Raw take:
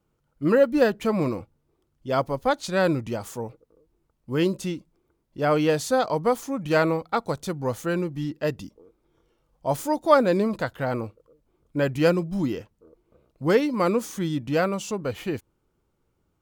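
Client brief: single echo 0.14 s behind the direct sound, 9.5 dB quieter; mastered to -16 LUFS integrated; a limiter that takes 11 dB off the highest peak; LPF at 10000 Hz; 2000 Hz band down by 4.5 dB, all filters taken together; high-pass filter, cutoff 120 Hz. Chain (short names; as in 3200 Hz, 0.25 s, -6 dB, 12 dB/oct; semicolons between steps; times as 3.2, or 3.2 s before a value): HPF 120 Hz; LPF 10000 Hz; bell 2000 Hz -6.5 dB; limiter -16 dBFS; echo 0.14 s -9.5 dB; gain +11.5 dB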